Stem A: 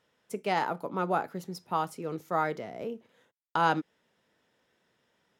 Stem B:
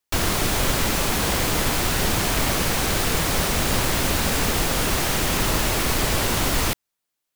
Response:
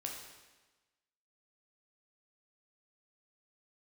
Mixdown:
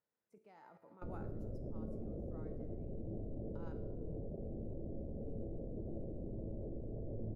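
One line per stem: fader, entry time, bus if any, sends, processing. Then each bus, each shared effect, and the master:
1.14 s -10.5 dB -> 1.81 s -23 dB, 0.00 s, send -8 dB, bell 3200 Hz -8 dB 0.41 oct
-4.5 dB, 0.90 s, no send, steep low-pass 590 Hz 48 dB/oct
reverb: on, RT60 1.2 s, pre-delay 10 ms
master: level quantiser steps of 17 dB; resonator 110 Hz, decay 0.82 s, harmonics all, mix 70%; mismatched tape noise reduction decoder only

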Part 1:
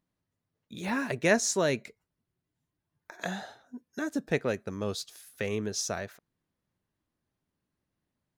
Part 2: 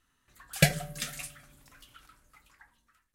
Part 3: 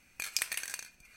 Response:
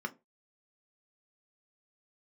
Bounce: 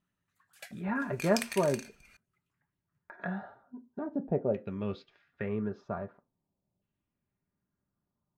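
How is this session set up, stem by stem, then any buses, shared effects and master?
-4.0 dB, 0.00 s, send -6.5 dB, LPF 4000 Hz 12 dB/oct; LFO low-pass saw down 0.44 Hz 650–3000 Hz
-16.5 dB, 0.00 s, no send, LFO high-pass saw up 8.4 Hz 590–2100 Hz; auto duck -12 dB, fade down 1.00 s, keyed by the first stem
+0.5 dB, 1.00 s, send -17 dB, high shelf 6000 Hz -7.5 dB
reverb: on, RT60 0.25 s, pre-delay 3 ms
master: dry

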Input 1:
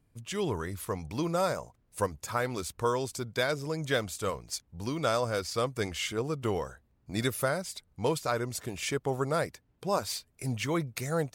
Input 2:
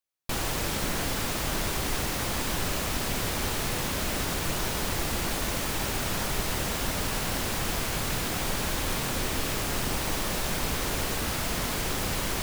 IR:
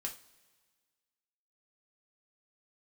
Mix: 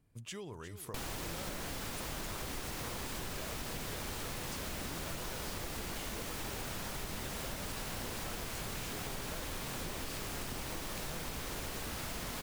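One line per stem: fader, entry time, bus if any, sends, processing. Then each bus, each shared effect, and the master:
-3.0 dB, 0.00 s, send -19.5 dB, echo send -11 dB, compressor 12:1, threshold -39 dBFS, peak gain reduction 16.5 dB
-5.5 dB, 0.65 s, no send, no echo send, dry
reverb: on, pre-delay 3 ms
echo: echo 0.357 s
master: compressor, threshold -37 dBFS, peak gain reduction 8.5 dB

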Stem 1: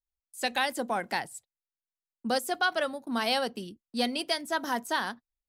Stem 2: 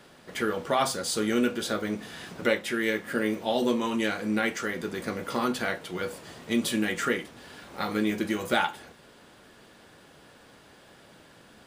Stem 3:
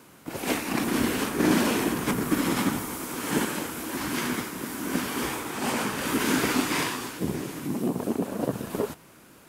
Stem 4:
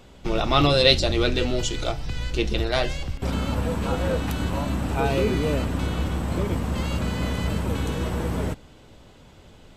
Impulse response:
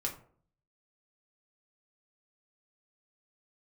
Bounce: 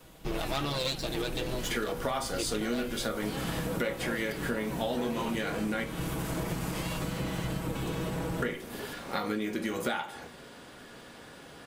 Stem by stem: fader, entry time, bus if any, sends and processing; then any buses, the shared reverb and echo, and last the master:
-11.0 dB, 0.00 s, no send, dry
0.0 dB, 1.35 s, muted 5.84–8.42, send -3.5 dB, dry
-11.5 dB, 0.00 s, no send, high shelf 6900 Hz +9 dB; limiter -18.5 dBFS, peak gain reduction 8 dB
-3.0 dB, 0.00 s, no send, minimum comb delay 6.2 ms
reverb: on, RT60 0.50 s, pre-delay 4 ms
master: compressor 6:1, threshold -29 dBFS, peak gain reduction 14.5 dB

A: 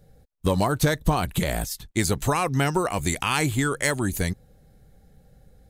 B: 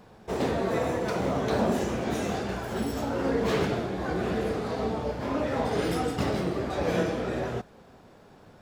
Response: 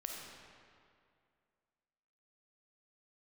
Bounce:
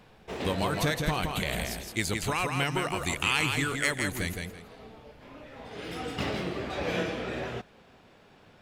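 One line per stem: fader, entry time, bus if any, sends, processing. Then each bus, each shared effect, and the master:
-9.0 dB, 0.00 s, no send, echo send -4.5 dB, dry
-5.0 dB, 0.00 s, no send, no echo send, auto duck -15 dB, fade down 1.95 s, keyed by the first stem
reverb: off
echo: feedback echo 0.165 s, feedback 24%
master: bell 2700 Hz +10 dB 1.4 oct

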